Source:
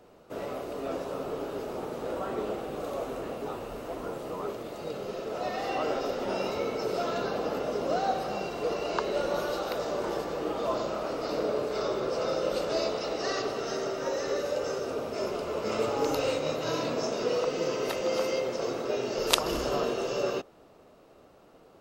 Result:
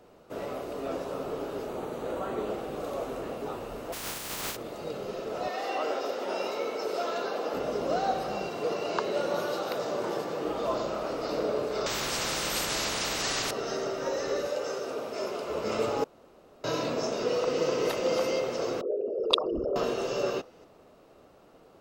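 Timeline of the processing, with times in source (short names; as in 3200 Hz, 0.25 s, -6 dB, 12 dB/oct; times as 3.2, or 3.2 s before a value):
1.68–2.49 notch 5200 Hz, Q 5.4
3.92–4.55 spectral contrast lowered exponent 0.22
5.48–7.54 HPF 340 Hz
8.49–10.45 HPF 92 Hz 24 dB/oct
11.86–13.51 spectral compressor 4:1
14.48–15.5 HPF 310 Hz 6 dB/oct
16.04–16.64 room tone
17.22–17.64 echo throw 0.25 s, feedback 80%, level -5 dB
18.81–19.76 formant sharpening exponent 3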